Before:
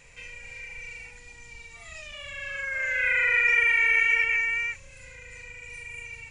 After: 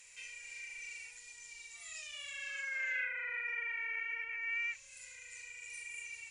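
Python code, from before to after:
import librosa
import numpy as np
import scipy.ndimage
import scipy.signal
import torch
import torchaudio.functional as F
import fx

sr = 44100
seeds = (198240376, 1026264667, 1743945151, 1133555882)

y = fx.env_lowpass_down(x, sr, base_hz=1200.0, full_db=-20.5)
y = librosa.effects.preemphasis(y, coef=0.97, zi=[0.0])
y = y * 10.0 ** (3.5 / 20.0)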